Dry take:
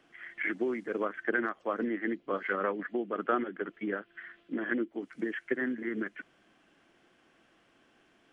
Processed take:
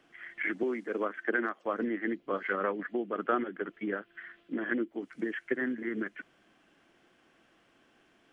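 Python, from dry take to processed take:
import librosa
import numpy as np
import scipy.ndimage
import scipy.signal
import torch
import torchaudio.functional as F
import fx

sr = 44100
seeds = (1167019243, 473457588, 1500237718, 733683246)

y = fx.highpass(x, sr, hz=190.0, slope=24, at=(0.63, 1.66))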